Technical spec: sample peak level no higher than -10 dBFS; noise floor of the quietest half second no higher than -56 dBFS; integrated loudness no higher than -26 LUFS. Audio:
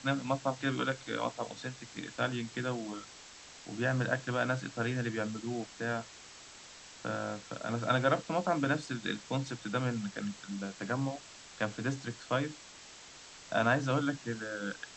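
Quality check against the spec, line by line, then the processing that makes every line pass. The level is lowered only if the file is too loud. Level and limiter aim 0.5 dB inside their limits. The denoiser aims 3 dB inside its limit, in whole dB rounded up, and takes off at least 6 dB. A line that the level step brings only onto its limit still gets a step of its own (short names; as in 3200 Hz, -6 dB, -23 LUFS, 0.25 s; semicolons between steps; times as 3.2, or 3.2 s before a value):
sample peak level -13.5 dBFS: OK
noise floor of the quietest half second -52 dBFS: fail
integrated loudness -34.5 LUFS: OK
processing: denoiser 7 dB, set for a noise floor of -52 dBFS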